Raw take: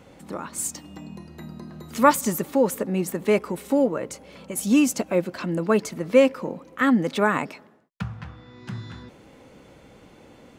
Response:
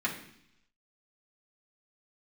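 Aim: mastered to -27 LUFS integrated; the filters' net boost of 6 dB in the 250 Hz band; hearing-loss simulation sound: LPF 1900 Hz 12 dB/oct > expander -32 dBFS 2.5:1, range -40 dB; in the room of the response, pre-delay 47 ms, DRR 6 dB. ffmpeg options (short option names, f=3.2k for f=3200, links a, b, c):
-filter_complex "[0:a]equalizer=f=250:t=o:g=7,asplit=2[a][b];[1:a]atrim=start_sample=2205,adelay=47[c];[b][c]afir=irnorm=-1:irlink=0,volume=-13.5dB[d];[a][d]amix=inputs=2:normalize=0,lowpass=1.9k,agate=range=-40dB:threshold=-32dB:ratio=2.5,volume=-9dB"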